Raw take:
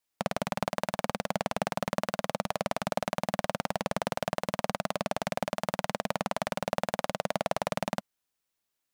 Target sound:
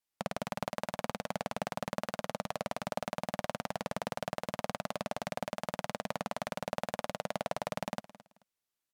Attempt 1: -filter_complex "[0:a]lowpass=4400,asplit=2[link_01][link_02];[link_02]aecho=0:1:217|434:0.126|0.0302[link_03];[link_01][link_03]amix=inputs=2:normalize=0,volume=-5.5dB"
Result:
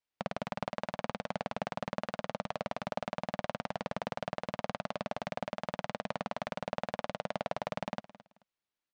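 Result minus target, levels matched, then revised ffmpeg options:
8,000 Hz band −9.0 dB
-filter_complex "[0:a]lowpass=17000,asplit=2[link_01][link_02];[link_02]aecho=0:1:217|434:0.126|0.0302[link_03];[link_01][link_03]amix=inputs=2:normalize=0,volume=-5.5dB"

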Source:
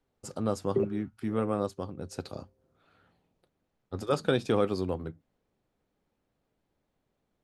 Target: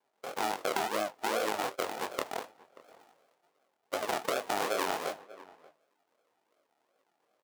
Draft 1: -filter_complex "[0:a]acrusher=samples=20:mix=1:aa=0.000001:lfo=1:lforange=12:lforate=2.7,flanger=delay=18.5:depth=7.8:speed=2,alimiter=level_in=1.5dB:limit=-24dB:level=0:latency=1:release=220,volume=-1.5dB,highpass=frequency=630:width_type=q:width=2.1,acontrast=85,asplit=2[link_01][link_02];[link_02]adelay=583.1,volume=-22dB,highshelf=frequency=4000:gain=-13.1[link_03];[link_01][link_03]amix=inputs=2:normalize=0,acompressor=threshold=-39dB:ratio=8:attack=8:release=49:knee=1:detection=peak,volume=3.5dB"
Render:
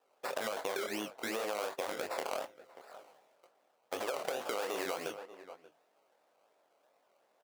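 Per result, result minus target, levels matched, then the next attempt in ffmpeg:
sample-and-hold swept by an LFO: distortion −19 dB; downward compressor: peak gain reduction +7 dB
-filter_complex "[0:a]acrusher=samples=65:mix=1:aa=0.000001:lfo=1:lforange=39:lforate=2.7,flanger=delay=18.5:depth=7.8:speed=2,alimiter=level_in=1.5dB:limit=-24dB:level=0:latency=1:release=220,volume=-1.5dB,highpass=frequency=630:width_type=q:width=2.1,acontrast=85,asplit=2[link_01][link_02];[link_02]adelay=583.1,volume=-22dB,highshelf=frequency=4000:gain=-13.1[link_03];[link_01][link_03]amix=inputs=2:normalize=0,acompressor=threshold=-39dB:ratio=8:attack=8:release=49:knee=1:detection=peak,volume=3.5dB"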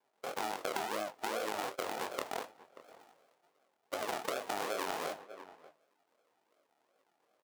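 downward compressor: peak gain reduction +5.5 dB
-filter_complex "[0:a]acrusher=samples=65:mix=1:aa=0.000001:lfo=1:lforange=39:lforate=2.7,flanger=delay=18.5:depth=7.8:speed=2,alimiter=level_in=1.5dB:limit=-24dB:level=0:latency=1:release=220,volume=-1.5dB,highpass=frequency=630:width_type=q:width=2.1,acontrast=85,asplit=2[link_01][link_02];[link_02]adelay=583.1,volume=-22dB,highshelf=frequency=4000:gain=-13.1[link_03];[link_01][link_03]amix=inputs=2:normalize=0,acompressor=threshold=-32.5dB:ratio=8:attack=8:release=49:knee=1:detection=peak,volume=3.5dB"

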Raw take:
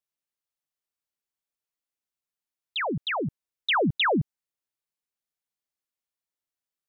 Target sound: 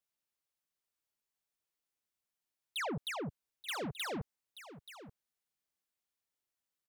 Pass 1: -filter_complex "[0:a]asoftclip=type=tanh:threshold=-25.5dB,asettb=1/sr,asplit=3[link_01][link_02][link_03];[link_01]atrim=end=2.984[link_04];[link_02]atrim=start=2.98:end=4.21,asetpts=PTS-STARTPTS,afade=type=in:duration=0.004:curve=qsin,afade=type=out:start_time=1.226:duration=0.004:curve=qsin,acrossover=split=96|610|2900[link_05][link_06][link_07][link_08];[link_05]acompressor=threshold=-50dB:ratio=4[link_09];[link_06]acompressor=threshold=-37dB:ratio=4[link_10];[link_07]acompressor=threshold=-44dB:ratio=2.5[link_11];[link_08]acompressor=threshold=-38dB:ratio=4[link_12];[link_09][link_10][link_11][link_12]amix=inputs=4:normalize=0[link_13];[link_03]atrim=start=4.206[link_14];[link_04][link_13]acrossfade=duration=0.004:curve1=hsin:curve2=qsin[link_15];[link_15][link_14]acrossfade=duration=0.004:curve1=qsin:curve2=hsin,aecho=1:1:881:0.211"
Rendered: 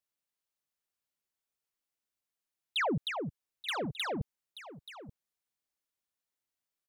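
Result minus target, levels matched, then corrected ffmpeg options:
soft clipping: distortion −6 dB
-filter_complex "[0:a]asoftclip=type=tanh:threshold=-35.5dB,asettb=1/sr,asplit=3[link_01][link_02][link_03];[link_01]atrim=end=2.984[link_04];[link_02]atrim=start=2.98:end=4.21,asetpts=PTS-STARTPTS,afade=type=in:duration=0.004:curve=qsin,afade=type=out:start_time=1.226:duration=0.004:curve=qsin,acrossover=split=96|610|2900[link_05][link_06][link_07][link_08];[link_05]acompressor=threshold=-50dB:ratio=4[link_09];[link_06]acompressor=threshold=-37dB:ratio=4[link_10];[link_07]acompressor=threshold=-44dB:ratio=2.5[link_11];[link_08]acompressor=threshold=-38dB:ratio=4[link_12];[link_09][link_10][link_11][link_12]amix=inputs=4:normalize=0[link_13];[link_03]atrim=start=4.206[link_14];[link_04][link_13]acrossfade=duration=0.004:curve1=hsin:curve2=qsin[link_15];[link_15][link_14]acrossfade=duration=0.004:curve1=qsin:curve2=hsin,aecho=1:1:881:0.211"

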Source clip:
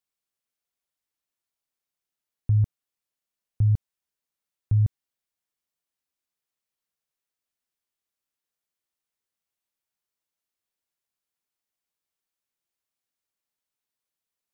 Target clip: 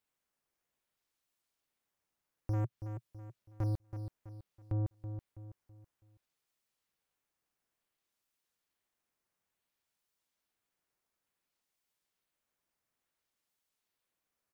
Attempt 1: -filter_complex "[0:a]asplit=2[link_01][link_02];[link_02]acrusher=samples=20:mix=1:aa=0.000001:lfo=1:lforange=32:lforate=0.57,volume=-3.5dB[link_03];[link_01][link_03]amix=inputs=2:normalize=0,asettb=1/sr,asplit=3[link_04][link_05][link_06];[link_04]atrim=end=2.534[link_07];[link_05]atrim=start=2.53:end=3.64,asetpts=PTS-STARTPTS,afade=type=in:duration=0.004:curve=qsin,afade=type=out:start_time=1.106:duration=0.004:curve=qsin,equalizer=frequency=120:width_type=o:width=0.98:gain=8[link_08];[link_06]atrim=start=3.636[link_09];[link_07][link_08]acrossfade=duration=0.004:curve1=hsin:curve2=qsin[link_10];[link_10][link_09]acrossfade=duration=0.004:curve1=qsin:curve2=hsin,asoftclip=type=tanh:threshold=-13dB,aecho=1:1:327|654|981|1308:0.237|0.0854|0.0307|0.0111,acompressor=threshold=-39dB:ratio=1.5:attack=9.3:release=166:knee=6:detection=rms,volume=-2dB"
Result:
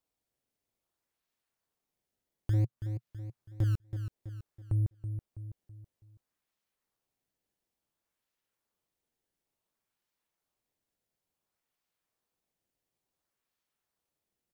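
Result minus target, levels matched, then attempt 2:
sample-and-hold swept by an LFO: distortion +11 dB; soft clipping: distortion −5 dB
-filter_complex "[0:a]asplit=2[link_01][link_02];[link_02]acrusher=samples=6:mix=1:aa=0.000001:lfo=1:lforange=9.6:lforate=0.57,volume=-3.5dB[link_03];[link_01][link_03]amix=inputs=2:normalize=0,asettb=1/sr,asplit=3[link_04][link_05][link_06];[link_04]atrim=end=2.534[link_07];[link_05]atrim=start=2.53:end=3.64,asetpts=PTS-STARTPTS,afade=type=in:duration=0.004:curve=qsin,afade=type=out:start_time=1.106:duration=0.004:curve=qsin,equalizer=frequency=120:width_type=o:width=0.98:gain=8[link_08];[link_06]atrim=start=3.636[link_09];[link_07][link_08]acrossfade=duration=0.004:curve1=hsin:curve2=qsin[link_10];[link_10][link_09]acrossfade=duration=0.004:curve1=qsin:curve2=hsin,asoftclip=type=tanh:threshold=-23.5dB,aecho=1:1:327|654|981|1308:0.237|0.0854|0.0307|0.0111,acompressor=threshold=-39dB:ratio=1.5:attack=9.3:release=166:knee=6:detection=rms,volume=-2dB"

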